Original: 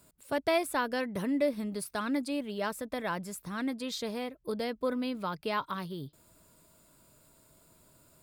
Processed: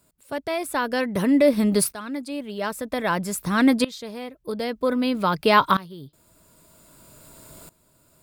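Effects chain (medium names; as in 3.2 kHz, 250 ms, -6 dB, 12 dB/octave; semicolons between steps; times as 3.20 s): loudness maximiser +19.5 dB; sawtooth tremolo in dB swelling 0.52 Hz, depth 20 dB; trim -1.5 dB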